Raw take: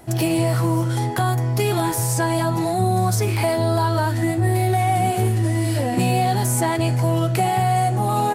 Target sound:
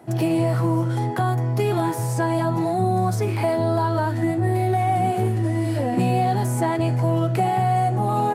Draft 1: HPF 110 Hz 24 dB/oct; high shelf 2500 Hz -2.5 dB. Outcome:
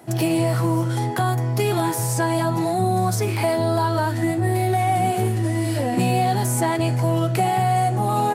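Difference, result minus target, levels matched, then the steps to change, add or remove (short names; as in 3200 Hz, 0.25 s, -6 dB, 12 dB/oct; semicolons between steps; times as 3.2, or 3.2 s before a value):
4000 Hz band +5.5 dB
change: high shelf 2500 Hz -11.5 dB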